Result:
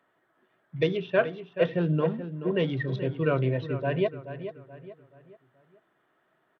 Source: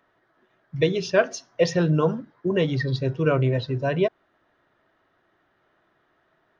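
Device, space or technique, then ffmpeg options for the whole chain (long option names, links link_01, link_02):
Bluetooth headset: -filter_complex "[0:a]asettb=1/sr,asplit=3[link_01][link_02][link_03];[link_01]atrim=end=1.664[link_04];[link_02]atrim=start=1.66:end=2.33,asetpts=PTS-STARTPTS,afade=type=in:duration=0.004:curve=qsin,afade=type=out:start_time=0.666:duration=0.004:curve=qsin,equalizer=frequency=1400:width_type=o:width=2.2:gain=-4.5[link_05];[link_03]atrim=start=2.326[link_06];[link_04][link_05]acrossfade=duration=0.004:curve1=hsin:curve2=qsin[link_07];[link_07][link_06]acrossfade=duration=0.004:curve1=qsin:curve2=hsin,highpass=frequency=120:width=0.5412,highpass=frequency=120:width=1.3066,asplit=2[link_08][link_09];[link_09]adelay=429,lowpass=frequency=3200:poles=1,volume=-11dB,asplit=2[link_10][link_11];[link_11]adelay=429,lowpass=frequency=3200:poles=1,volume=0.4,asplit=2[link_12][link_13];[link_13]adelay=429,lowpass=frequency=3200:poles=1,volume=0.4,asplit=2[link_14][link_15];[link_15]adelay=429,lowpass=frequency=3200:poles=1,volume=0.4[link_16];[link_08][link_10][link_12][link_14][link_16]amix=inputs=5:normalize=0,aresample=8000,aresample=44100,volume=-4dB" -ar 32000 -c:a sbc -b:a 64k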